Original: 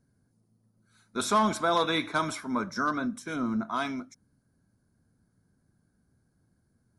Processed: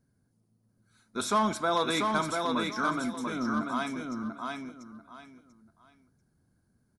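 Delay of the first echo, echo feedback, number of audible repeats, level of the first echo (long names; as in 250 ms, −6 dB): 690 ms, 24%, 3, −4.0 dB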